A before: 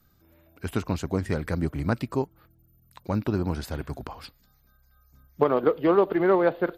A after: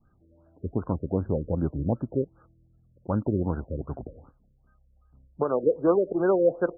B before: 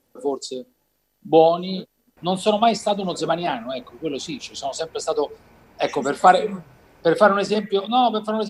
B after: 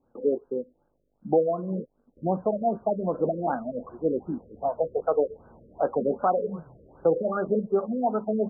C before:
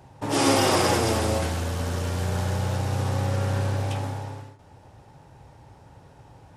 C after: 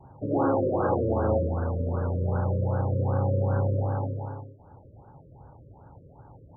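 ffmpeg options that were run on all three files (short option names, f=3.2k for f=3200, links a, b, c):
-af "alimiter=limit=-13dB:level=0:latency=1:release=473,adynamicequalizer=threshold=0.00794:dfrequency=520:dqfactor=6.6:tfrequency=520:tqfactor=6.6:attack=5:release=100:ratio=0.375:range=2.5:mode=boostabove:tftype=bell,afftfilt=real='re*lt(b*sr/1024,580*pow(1700/580,0.5+0.5*sin(2*PI*2.6*pts/sr)))':imag='im*lt(b*sr/1024,580*pow(1700/580,0.5+0.5*sin(2*PI*2.6*pts/sr)))':win_size=1024:overlap=0.75"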